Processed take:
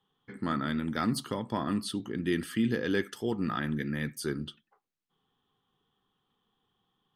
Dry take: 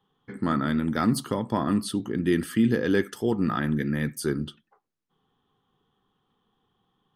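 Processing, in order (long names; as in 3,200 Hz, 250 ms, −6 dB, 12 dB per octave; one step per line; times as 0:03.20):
parametric band 3,200 Hz +5.5 dB 2 octaves
level −6.5 dB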